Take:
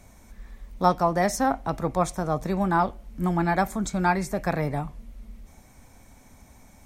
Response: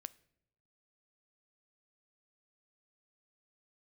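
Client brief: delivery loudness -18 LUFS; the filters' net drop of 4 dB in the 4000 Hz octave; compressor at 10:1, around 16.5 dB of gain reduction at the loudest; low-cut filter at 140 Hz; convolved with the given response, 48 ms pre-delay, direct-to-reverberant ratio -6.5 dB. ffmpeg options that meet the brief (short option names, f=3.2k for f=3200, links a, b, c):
-filter_complex "[0:a]highpass=140,equalizer=f=4k:t=o:g=-5.5,acompressor=threshold=-31dB:ratio=10,asplit=2[a][b];[1:a]atrim=start_sample=2205,adelay=48[c];[b][c]afir=irnorm=-1:irlink=0,volume=11.5dB[d];[a][d]amix=inputs=2:normalize=0,volume=11.5dB"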